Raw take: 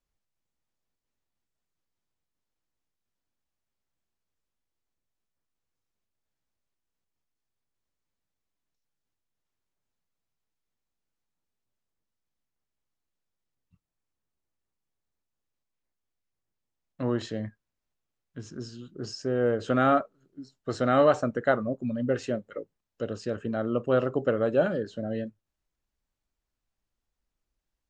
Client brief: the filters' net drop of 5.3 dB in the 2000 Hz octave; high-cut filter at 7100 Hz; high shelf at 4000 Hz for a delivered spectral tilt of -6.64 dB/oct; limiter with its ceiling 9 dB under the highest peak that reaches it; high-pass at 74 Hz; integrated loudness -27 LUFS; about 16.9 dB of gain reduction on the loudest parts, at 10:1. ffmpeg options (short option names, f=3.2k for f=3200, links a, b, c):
-af "highpass=74,lowpass=7.1k,equalizer=f=2k:t=o:g=-6.5,highshelf=f=4k:g=-9,acompressor=threshold=-35dB:ratio=10,volume=17.5dB,alimiter=limit=-16dB:level=0:latency=1"